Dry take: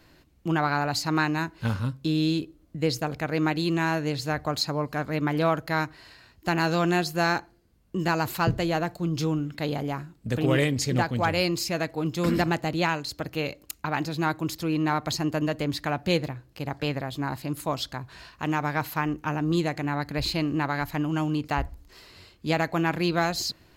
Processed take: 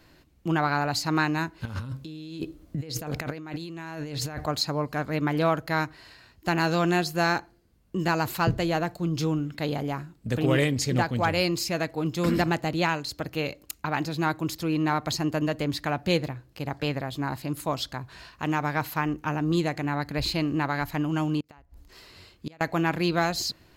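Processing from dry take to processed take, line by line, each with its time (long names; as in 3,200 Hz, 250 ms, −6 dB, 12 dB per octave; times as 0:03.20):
0:01.65–0:04.48: compressor whose output falls as the input rises −35 dBFS
0:21.40–0:22.61: gate with flip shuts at −22 dBFS, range −28 dB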